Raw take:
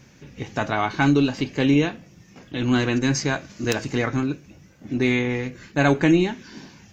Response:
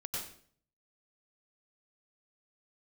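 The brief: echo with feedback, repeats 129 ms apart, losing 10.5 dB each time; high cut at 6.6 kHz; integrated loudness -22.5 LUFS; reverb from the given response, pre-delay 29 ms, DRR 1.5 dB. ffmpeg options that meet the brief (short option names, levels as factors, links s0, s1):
-filter_complex "[0:a]lowpass=6600,aecho=1:1:129|258|387:0.299|0.0896|0.0269,asplit=2[s0][s1];[1:a]atrim=start_sample=2205,adelay=29[s2];[s1][s2]afir=irnorm=-1:irlink=0,volume=0.75[s3];[s0][s3]amix=inputs=2:normalize=0,volume=0.708"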